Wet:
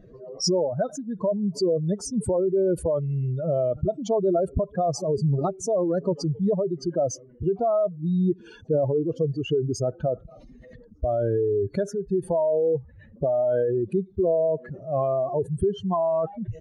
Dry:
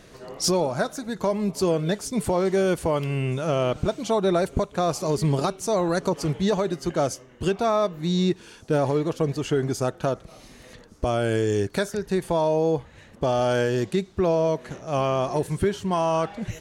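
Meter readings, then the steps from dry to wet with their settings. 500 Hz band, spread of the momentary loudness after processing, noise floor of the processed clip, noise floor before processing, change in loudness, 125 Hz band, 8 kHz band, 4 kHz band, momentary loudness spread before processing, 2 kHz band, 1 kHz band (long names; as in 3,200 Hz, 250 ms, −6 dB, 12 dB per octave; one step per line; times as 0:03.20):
+0.5 dB, 6 LU, −50 dBFS, −50 dBFS, −0.5 dB, −1.0 dB, −3.5 dB, −5.0 dB, 6 LU, −14.5 dB, −5.0 dB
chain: expanding power law on the bin magnitudes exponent 2.6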